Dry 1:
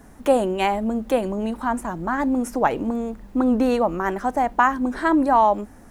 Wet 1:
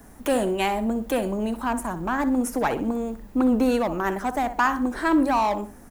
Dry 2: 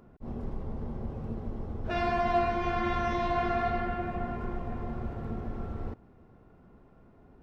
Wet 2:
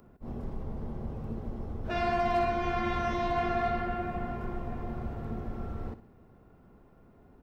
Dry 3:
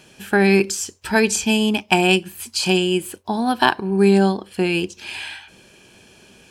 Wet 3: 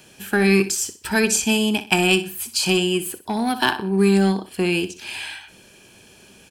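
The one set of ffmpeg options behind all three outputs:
ffmpeg -i in.wav -filter_complex "[0:a]highshelf=frequency=11000:gain=11.5,aecho=1:1:62|124|186:0.211|0.0676|0.0216,acrossover=split=400|1100|2800[link_01][link_02][link_03][link_04];[link_02]volume=25.5dB,asoftclip=hard,volume=-25.5dB[link_05];[link_01][link_05][link_03][link_04]amix=inputs=4:normalize=0,volume=-1dB" out.wav

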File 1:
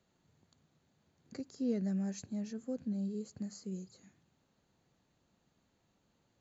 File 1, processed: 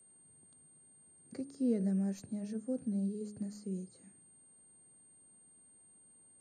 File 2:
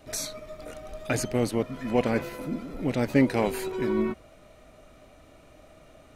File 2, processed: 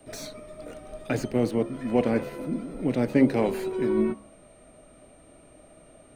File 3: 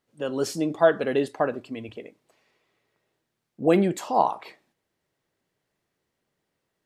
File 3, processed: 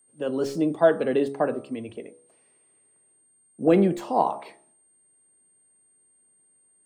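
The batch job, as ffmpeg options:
ffmpeg -i in.wav -filter_complex "[0:a]bandreject=frequency=69.33:width_type=h:width=4,bandreject=frequency=138.66:width_type=h:width=4,bandreject=frequency=207.99:width_type=h:width=4,bandreject=frequency=277.32:width_type=h:width=4,bandreject=frequency=346.65:width_type=h:width=4,bandreject=frequency=415.98:width_type=h:width=4,bandreject=frequency=485.31:width_type=h:width=4,bandreject=frequency=554.64:width_type=h:width=4,bandreject=frequency=623.97:width_type=h:width=4,bandreject=frequency=693.3:width_type=h:width=4,bandreject=frequency=762.63:width_type=h:width=4,bandreject=frequency=831.96:width_type=h:width=4,bandreject=frequency=901.29:width_type=h:width=4,bandreject=frequency=970.62:width_type=h:width=4,bandreject=frequency=1039.95:width_type=h:width=4,bandreject=frequency=1109.28:width_type=h:width=4,bandreject=frequency=1178.61:width_type=h:width=4,bandreject=frequency=1247.94:width_type=h:width=4,bandreject=frequency=1317.27:width_type=h:width=4,bandreject=frequency=1386.6:width_type=h:width=4,acrossover=split=140|640|4700[link_01][link_02][link_03][link_04];[link_02]acontrast=56[link_05];[link_04]aeval=exprs='(tanh(112*val(0)+0.75)-tanh(0.75))/112':channel_layout=same[link_06];[link_01][link_05][link_03][link_06]amix=inputs=4:normalize=0,aeval=exprs='val(0)+0.00141*sin(2*PI*8700*n/s)':channel_layout=same,volume=-3dB" out.wav

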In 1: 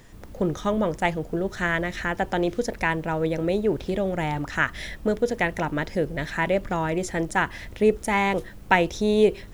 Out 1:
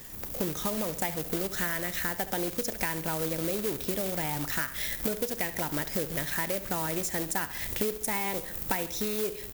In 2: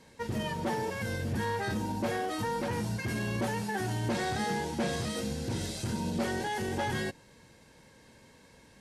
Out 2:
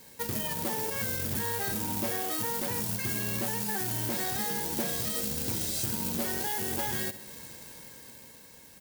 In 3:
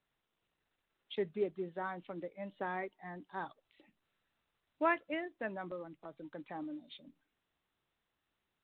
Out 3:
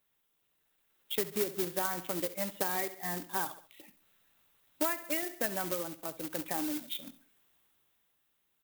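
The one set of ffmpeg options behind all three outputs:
ffmpeg -i in.wav -af "acrusher=bits=2:mode=log:mix=0:aa=0.000001,aemphasis=mode=production:type=50fm,asoftclip=type=tanh:threshold=-9.5dB,dynaudnorm=framelen=170:gausssize=13:maxgain=8dB,lowshelf=frequency=63:gain=-5.5,aecho=1:1:68|136|204:0.158|0.0618|0.0241,acompressor=threshold=-27dB:ratio=12" out.wav

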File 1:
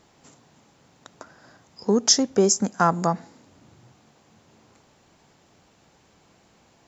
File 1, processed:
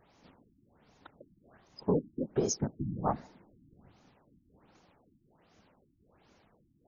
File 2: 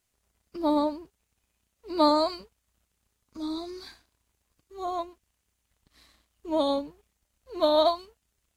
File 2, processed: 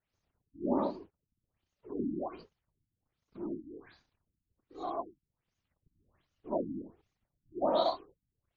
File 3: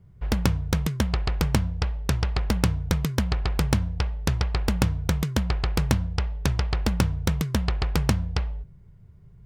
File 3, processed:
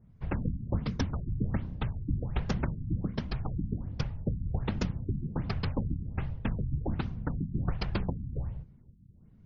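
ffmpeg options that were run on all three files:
ffmpeg -i in.wav -af "afftfilt=real='hypot(re,im)*cos(2*PI*random(0))':imag='hypot(re,im)*sin(2*PI*random(1))':win_size=512:overlap=0.75,alimiter=limit=-17dB:level=0:latency=1:release=331,afftfilt=real='re*lt(b*sr/1024,320*pow(7100/320,0.5+0.5*sin(2*PI*1.3*pts/sr)))':imag='im*lt(b*sr/1024,320*pow(7100/320,0.5+0.5*sin(2*PI*1.3*pts/sr)))':win_size=1024:overlap=0.75" out.wav

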